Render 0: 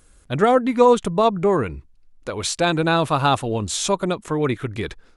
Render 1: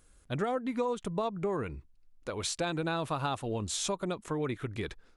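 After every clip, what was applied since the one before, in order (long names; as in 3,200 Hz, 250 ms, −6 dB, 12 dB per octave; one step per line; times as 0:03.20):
downward compressor 6 to 1, threshold −20 dBFS, peak gain reduction 10.5 dB
level −8.5 dB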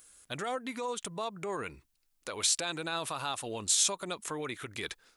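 brickwall limiter −26 dBFS, peak gain reduction 6.5 dB
spectral tilt +3.5 dB per octave
level +1 dB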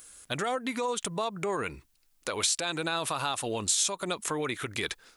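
downward compressor 2.5 to 1, threshold −34 dBFS, peak gain reduction 8 dB
level +7 dB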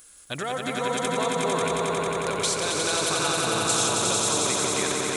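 echo that builds up and dies away 90 ms, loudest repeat 5, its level −4 dB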